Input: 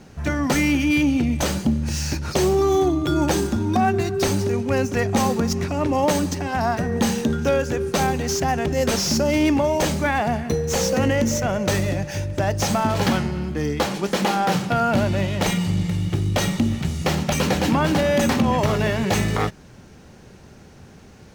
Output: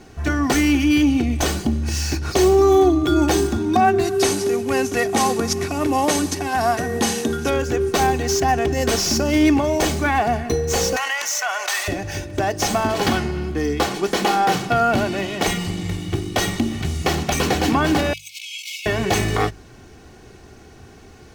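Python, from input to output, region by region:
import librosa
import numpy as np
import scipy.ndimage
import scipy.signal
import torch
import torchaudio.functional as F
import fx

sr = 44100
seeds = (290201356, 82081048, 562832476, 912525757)

y = fx.chain(x, sr, fx.cvsd(bps=64000),
    fx.highpass(hz=130.0, slope=6),
    fx.high_shelf(hz=6200.0, db=6.5), at=(4.03, 7.5))
y = fx.chain(y, sr, fx.highpass(hz=870.0, slope=24),
    fx.env_flatten(amount_pct=70), at=(10.96, 11.88))
y = fx.chain(y, sr, fx.brickwall_highpass(low_hz=2100.0),
    fx.over_compress(threshold_db=-36.0, ratio=-0.5), at=(18.13, 18.86))
y = fx.hum_notches(y, sr, base_hz=50, count=3)
y = y + 0.5 * np.pad(y, (int(2.7 * sr / 1000.0), 0))[:len(y)]
y = y * librosa.db_to_amplitude(1.5)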